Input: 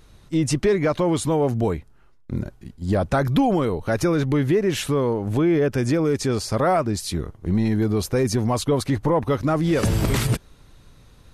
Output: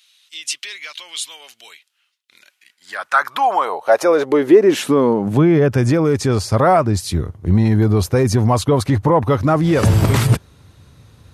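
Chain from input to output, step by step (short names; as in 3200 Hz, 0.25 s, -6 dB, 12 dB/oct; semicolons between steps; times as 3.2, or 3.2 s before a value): high-pass sweep 3000 Hz -> 88 Hz, 2.34–5.89; dynamic EQ 940 Hz, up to +5 dB, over -32 dBFS, Q 0.87; gain +3 dB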